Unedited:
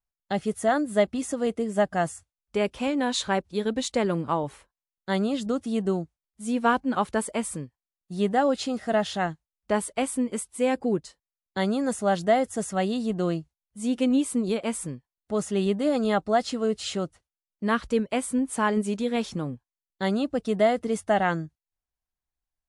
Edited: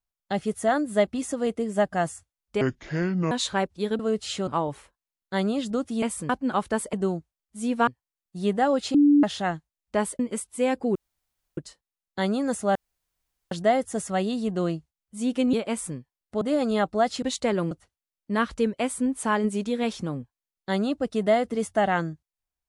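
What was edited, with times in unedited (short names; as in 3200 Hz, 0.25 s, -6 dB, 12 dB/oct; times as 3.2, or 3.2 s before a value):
2.61–3.06 speed 64%
3.74–4.23 swap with 16.56–17.04
5.78–6.72 swap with 7.36–7.63
8.7–8.99 bleep 290 Hz -13.5 dBFS
9.95–10.2 cut
10.96 insert room tone 0.62 s
12.14 insert room tone 0.76 s
14.16–14.5 cut
15.38–15.75 cut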